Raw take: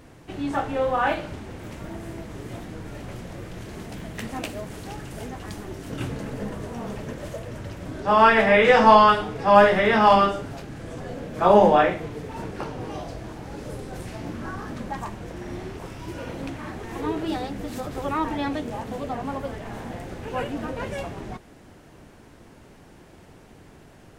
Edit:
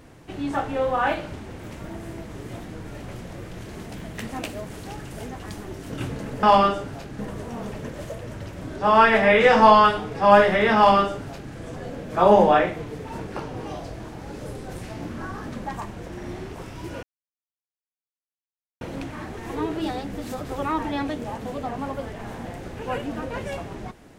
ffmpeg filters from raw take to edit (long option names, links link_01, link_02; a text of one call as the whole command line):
ffmpeg -i in.wav -filter_complex "[0:a]asplit=4[link_01][link_02][link_03][link_04];[link_01]atrim=end=6.432[link_05];[link_02]atrim=start=10.008:end=10.772[link_06];[link_03]atrim=start=6.428:end=16.27,asetpts=PTS-STARTPTS,afade=type=out:start_time=9.838:duration=0.004:curve=hsin,apad=pad_dur=1.78[link_07];[link_04]atrim=start=16.27,asetpts=PTS-STARTPTS,afade=type=in:duration=0.004:curve=hsin[link_08];[link_05][link_06]acrossfade=duration=0.004:curve1=hsin:curve2=hsin[link_09];[link_07][link_08]concat=n=2:v=0:a=1[link_10];[link_09][link_10]acrossfade=duration=0.004:curve1=hsin:curve2=hsin" out.wav